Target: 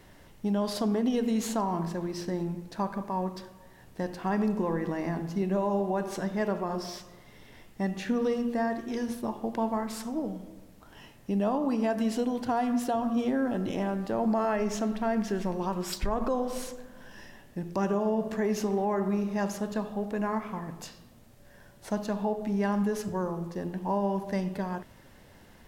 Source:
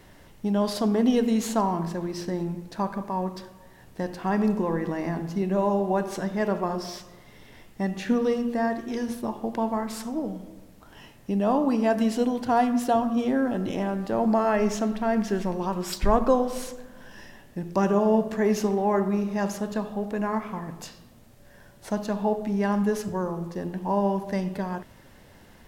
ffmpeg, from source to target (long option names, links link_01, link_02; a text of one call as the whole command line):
ffmpeg -i in.wav -af "alimiter=limit=-17dB:level=0:latency=1:release=110,volume=-2.5dB" out.wav